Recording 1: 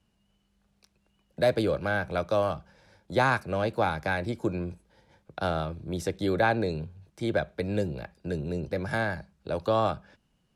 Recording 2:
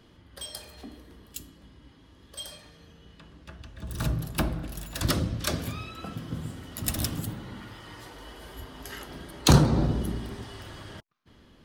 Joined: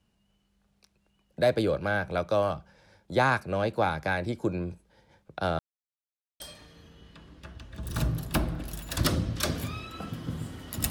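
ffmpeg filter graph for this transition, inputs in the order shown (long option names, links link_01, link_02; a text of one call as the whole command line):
ffmpeg -i cue0.wav -i cue1.wav -filter_complex "[0:a]apad=whole_dur=10.9,atrim=end=10.9,asplit=2[link_01][link_02];[link_01]atrim=end=5.59,asetpts=PTS-STARTPTS,afade=type=out:start_time=5.586:duration=0.004:curve=hsin[link_03];[link_02]atrim=start=5.59:end=6.4,asetpts=PTS-STARTPTS,volume=0[link_04];[1:a]atrim=start=2.44:end=6.94,asetpts=PTS-STARTPTS,afade=type=in:duration=0.004:curve=hsin[link_05];[link_03][link_04][link_05]concat=n=3:v=0:a=1" out.wav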